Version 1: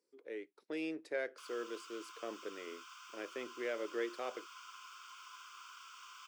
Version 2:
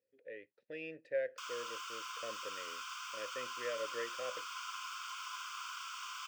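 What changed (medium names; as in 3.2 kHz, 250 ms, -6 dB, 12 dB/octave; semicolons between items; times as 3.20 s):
speech: add vowel filter e; master: remove ladder high-pass 320 Hz, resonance 50%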